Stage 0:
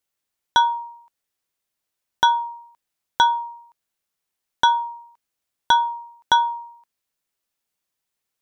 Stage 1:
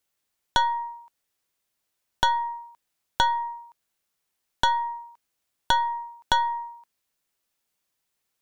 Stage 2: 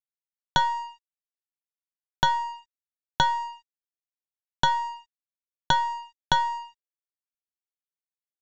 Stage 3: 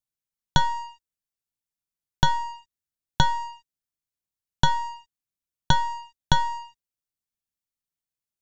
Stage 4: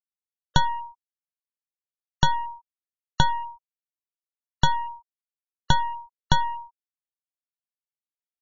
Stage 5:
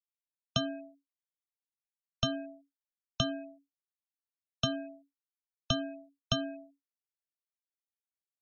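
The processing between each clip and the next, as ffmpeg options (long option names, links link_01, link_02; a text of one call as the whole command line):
ffmpeg -i in.wav -af "acompressor=threshold=-24dB:ratio=3,aeval=exprs='(tanh(7.08*val(0)+0.7)-tanh(0.7))/7.08':channel_layout=same,volume=6.5dB" out.wav
ffmpeg -i in.wav -af "equalizer=frequency=150:width=2.9:gain=15,aresample=16000,aeval=exprs='sgn(val(0))*max(abs(val(0))-0.00841,0)':channel_layout=same,aresample=44100" out.wav
ffmpeg -i in.wav -af "bass=frequency=250:gain=12,treble=frequency=4000:gain=5,volume=-1dB" out.wav
ffmpeg -i in.wav -af "afftfilt=real='re*gte(hypot(re,im),0.0282)':imag='im*gte(hypot(re,im),0.0282)':win_size=1024:overlap=0.75" out.wav
ffmpeg -i in.wav -af "afreqshift=-280,equalizer=frequency=420:width=0.34:gain=-13,agate=range=-33dB:threshold=-57dB:ratio=3:detection=peak,volume=-3dB" out.wav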